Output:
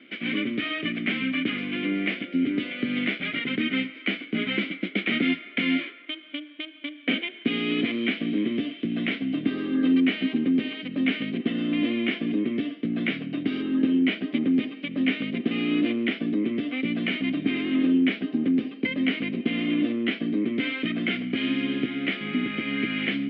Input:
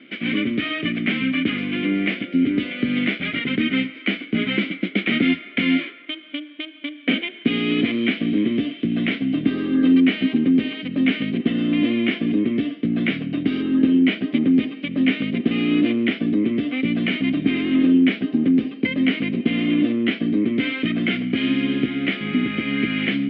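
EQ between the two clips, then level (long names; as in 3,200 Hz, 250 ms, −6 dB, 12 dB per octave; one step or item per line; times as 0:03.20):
high-pass filter 210 Hz 6 dB per octave
−3.5 dB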